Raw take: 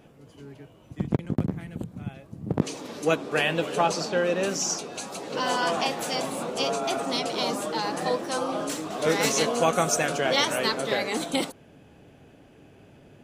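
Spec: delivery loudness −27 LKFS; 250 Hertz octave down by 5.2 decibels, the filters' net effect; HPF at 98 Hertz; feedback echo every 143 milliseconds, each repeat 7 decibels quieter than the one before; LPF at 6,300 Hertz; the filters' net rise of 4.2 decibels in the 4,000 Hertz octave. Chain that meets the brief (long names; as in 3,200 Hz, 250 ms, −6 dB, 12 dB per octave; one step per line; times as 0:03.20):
high-pass filter 98 Hz
low-pass filter 6,300 Hz
parametric band 250 Hz −7 dB
parametric band 4,000 Hz +6 dB
repeating echo 143 ms, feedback 45%, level −7 dB
level −2 dB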